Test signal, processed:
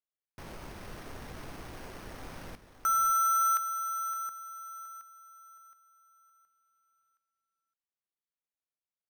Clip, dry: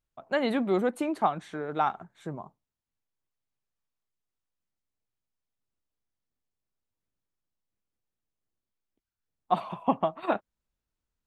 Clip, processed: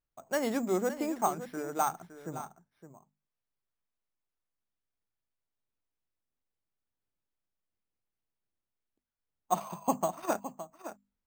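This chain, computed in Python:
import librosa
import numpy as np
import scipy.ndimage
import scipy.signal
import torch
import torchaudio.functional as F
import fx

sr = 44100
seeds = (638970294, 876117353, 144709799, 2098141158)

p1 = scipy.signal.medfilt(x, 9)
p2 = fx.hum_notches(p1, sr, base_hz=50, count=5)
p3 = p2 + fx.echo_single(p2, sr, ms=564, db=-12.0, dry=0)
p4 = np.repeat(p3[::6], 6)[:len(p3)]
y = p4 * librosa.db_to_amplitude(-3.5)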